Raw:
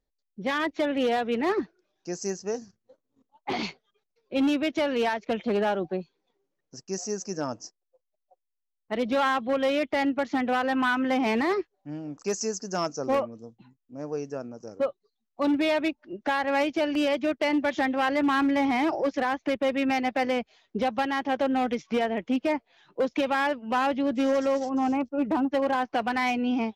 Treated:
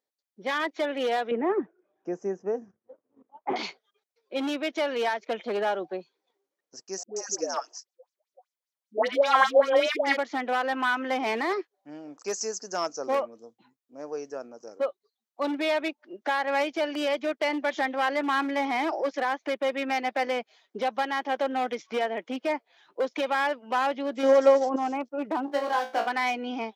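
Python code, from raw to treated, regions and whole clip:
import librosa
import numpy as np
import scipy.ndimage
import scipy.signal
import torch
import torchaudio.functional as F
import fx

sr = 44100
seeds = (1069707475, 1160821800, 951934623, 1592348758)

y = fx.chain(x, sr, fx.moving_average(points=10),
    fx.tilt_eq(slope=-3.5),
    fx.band_squash(depth_pct=40), at=(1.31, 3.56))
y = fx.chain(y, sr, fx.highpass(hz=240.0, slope=12),
    fx.dispersion(late='highs', ms=134.0, hz=650.0),
    fx.bell_lfo(hz=5.1, low_hz=480.0, high_hz=6600.0, db=13), at=(7.03, 10.17))
y = fx.chain(y, sr, fx.peak_eq(hz=500.0, db=6.5, octaves=3.0),
    fx.transient(attack_db=10, sustain_db=0), at=(24.23, 24.76))
y = fx.chain(y, sr, fx.median_filter(points=15),
    fx.low_shelf(hz=170.0, db=-9.0),
    fx.room_flutter(wall_m=3.0, rt60_s=0.29), at=(25.46, 26.07))
y = scipy.signal.sosfilt(scipy.signal.butter(2, 400.0, 'highpass', fs=sr, output='sos'), y)
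y = fx.notch(y, sr, hz=2700.0, q=17.0)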